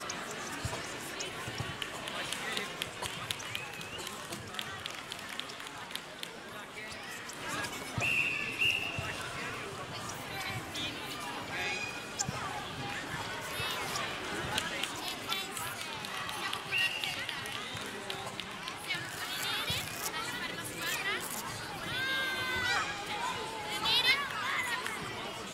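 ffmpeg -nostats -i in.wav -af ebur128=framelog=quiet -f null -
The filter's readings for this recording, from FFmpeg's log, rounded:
Integrated loudness:
  I:         -34.8 LUFS
  Threshold: -44.8 LUFS
Loudness range:
  LRA:         7.4 LU
  Threshold: -55.0 LUFS
  LRA low:   -38.8 LUFS
  LRA high:  -31.4 LUFS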